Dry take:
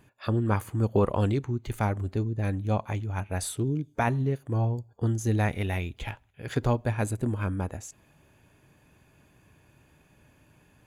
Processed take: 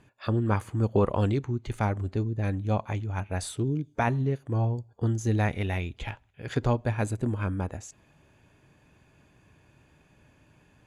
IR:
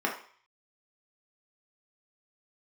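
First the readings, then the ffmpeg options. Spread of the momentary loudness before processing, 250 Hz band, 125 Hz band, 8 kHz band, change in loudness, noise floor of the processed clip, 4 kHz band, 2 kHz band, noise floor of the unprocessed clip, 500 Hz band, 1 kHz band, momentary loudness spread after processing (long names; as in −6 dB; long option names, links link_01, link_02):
8 LU, 0.0 dB, 0.0 dB, −3.0 dB, 0.0 dB, −62 dBFS, 0.0 dB, 0.0 dB, −62 dBFS, 0.0 dB, 0.0 dB, 8 LU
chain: -af "lowpass=8100"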